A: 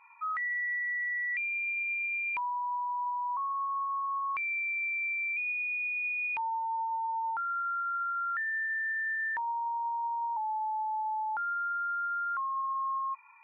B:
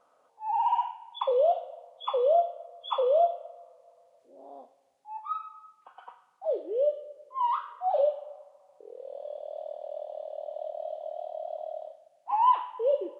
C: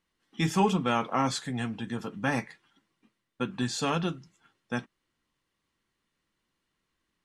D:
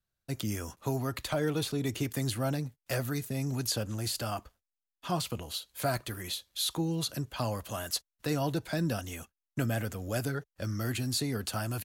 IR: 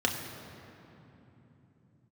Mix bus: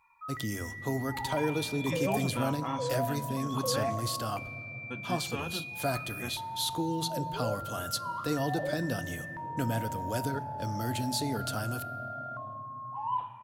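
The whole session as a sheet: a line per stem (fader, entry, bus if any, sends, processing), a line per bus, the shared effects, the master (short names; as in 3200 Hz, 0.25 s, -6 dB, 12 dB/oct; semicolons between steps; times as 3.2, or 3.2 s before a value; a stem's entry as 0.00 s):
-10.5 dB, 0.00 s, send -21.5 dB, tone controls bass +12 dB, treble +14 dB; low shelf 400 Hz +11.5 dB
-13.5 dB, 0.65 s, send -14 dB, dry
-10.0 dB, 1.50 s, no send, dry
-2.0 dB, 0.00 s, send -19.5 dB, dry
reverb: on, RT60 3.3 s, pre-delay 3 ms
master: dry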